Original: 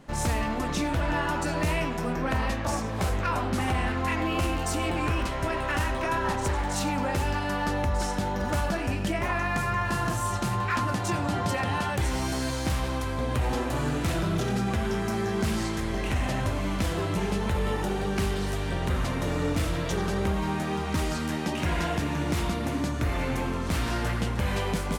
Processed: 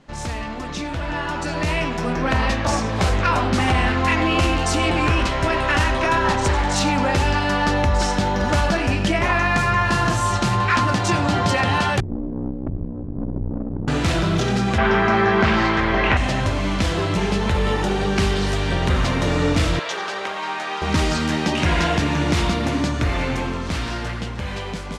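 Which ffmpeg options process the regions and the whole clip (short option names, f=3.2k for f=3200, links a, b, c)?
-filter_complex "[0:a]asettb=1/sr,asplit=3[a][b][c];[a]atrim=end=12.004[d];[b]atrim=start=12:end=13.88,asetpts=PTS-STARTPTS,afade=t=in:d=0.004:c=qsin,afade=t=out:st=1.876:d=0.004:c=qsin,lowpass=f=240:t=q:w=2.4,aeval=exprs='(tanh(20*val(0)+0.8)-tanh(0.8))/20':c=same,aeval=exprs='val(0)*sin(2*PI*31*n/s)':c=same[e];[c]atrim=start=13.876[f];[d][e]acrossfade=d=0.004:c1=hsin:c2=qsin[g];[g][f]acrossfade=d=0.004:c1=qsin:c2=hsin,asettb=1/sr,asplit=3[h][i][j];[h]atrim=end=14.784[k];[i]atrim=start=14.78:end=16.17,asetpts=PTS-STARTPTS,afade=t=in:d=0.004:c=qsin,afade=t=out:st=1.386:d=0.004:c=qsin,tiltshelf=f=660:g=-7,acontrast=83,lowpass=1.7k[l];[j]atrim=start=16.166[m];[k][l]acrossfade=d=0.004:c1=hsin:c2=qsin[n];[n][m]acrossfade=d=0.004:c1=qsin:c2=hsin,asettb=1/sr,asplit=3[o][p][q];[o]atrim=end=19.794[r];[p]atrim=start=19.79:end=20.82,asetpts=PTS-STARTPTS,afade=t=in:d=0.004:c=qsin,afade=t=out:st=1.026:d=0.004:c=qsin,highpass=720,highshelf=f=5.9k:g=-9[s];[q]atrim=start=20.816[t];[r][s]acrossfade=d=0.004:c1=hsin:c2=qsin[u];[u][t]acrossfade=d=0.004:c1=qsin:c2=hsin,lowpass=5k,highshelf=f=3.4k:g=8.5,dynaudnorm=f=210:g=17:m=9.5dB,volume=-1.5dB"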